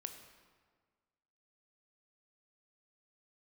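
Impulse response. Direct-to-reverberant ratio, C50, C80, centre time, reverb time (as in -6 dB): 6.0 dB, 8.0 dB, 9.0 dB, 25 ms, 1.6 s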